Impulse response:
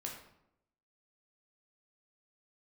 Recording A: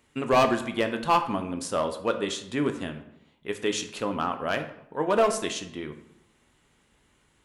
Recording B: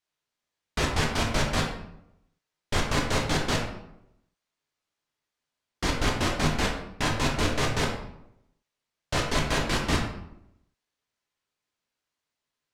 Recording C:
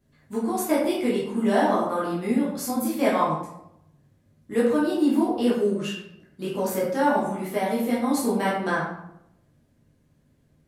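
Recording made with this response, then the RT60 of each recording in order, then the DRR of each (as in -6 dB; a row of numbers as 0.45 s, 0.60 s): B; 0.80 s, 0.80 s, 0.80 s; 6.5 dB, -1.0 dB, -7.0 dB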